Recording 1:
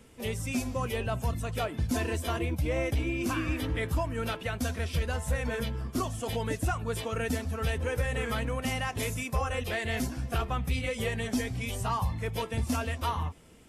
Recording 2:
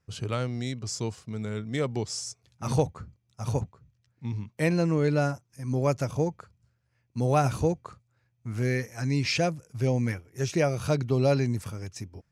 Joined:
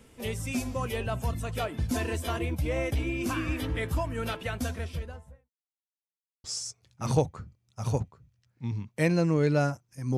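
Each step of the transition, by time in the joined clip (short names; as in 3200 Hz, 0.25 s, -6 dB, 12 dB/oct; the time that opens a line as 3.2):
recording 1
4.52–5.5 studio fade out
5.5–6.44 mute
6.44 switch to recording 2 from 2.05 s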